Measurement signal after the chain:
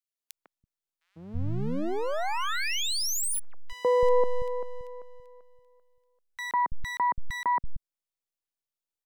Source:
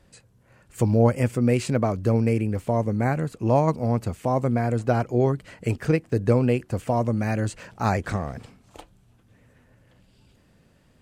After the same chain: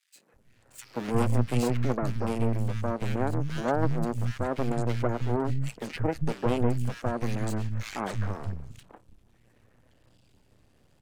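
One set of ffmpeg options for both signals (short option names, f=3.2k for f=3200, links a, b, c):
-filter_complex "[0:a]aeval=exprs='max(val(0),0)':c=same,acrossover=split=190|1800[a][b][c];[b]adelay=150[d];[a]adelay=330[e];[e][d][c]amix=inputs=3:normalize=0"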